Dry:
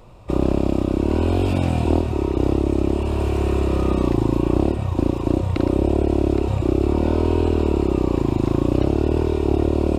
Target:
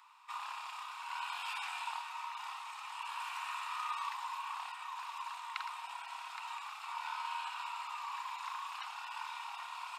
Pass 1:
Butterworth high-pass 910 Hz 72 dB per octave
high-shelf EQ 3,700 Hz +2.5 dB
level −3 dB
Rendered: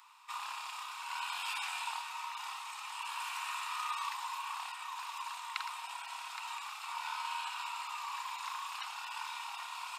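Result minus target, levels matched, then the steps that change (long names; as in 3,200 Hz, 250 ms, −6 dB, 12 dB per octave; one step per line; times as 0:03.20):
8,000 Hz band +5.5 dB
change: high-shelf EQ 3,700 Hz −6.5 dB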